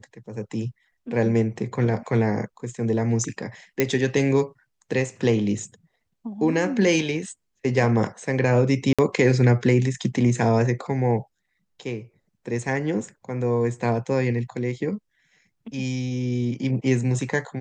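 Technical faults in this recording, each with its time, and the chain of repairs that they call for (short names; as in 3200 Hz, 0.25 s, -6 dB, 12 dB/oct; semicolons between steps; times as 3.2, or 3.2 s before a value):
3.8 pop -6 dBFS
8.93–8.99 gap 56 ms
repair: de-click; interpolate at 8.93, 56 ms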